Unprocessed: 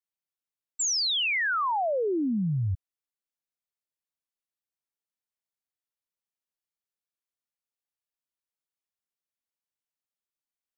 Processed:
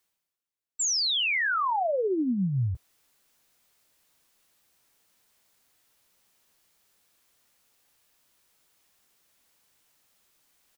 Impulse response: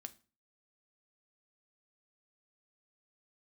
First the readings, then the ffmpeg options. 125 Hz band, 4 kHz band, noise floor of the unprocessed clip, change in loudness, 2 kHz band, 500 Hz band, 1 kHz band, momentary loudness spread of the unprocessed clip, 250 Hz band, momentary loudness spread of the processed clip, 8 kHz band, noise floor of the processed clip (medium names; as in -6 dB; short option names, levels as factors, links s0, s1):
0.0 dB, +0.5 dB, under -85 dBFS, 0.0 dB, +0.5 dB, +0.5 dB, +0.5 dB, 7 LU, +0.5 dB, 7 LU, no reading, -84 dBFS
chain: -filter_complex "[0:a]areverse,acompressor=mode=upward:threshold=0.00355:ratio=2.5,areverse,asplit=2[s0][s1];[s1]adelay=16,volume=0.266[s2];[s0][s2]amix=inputs=2:normalize=0"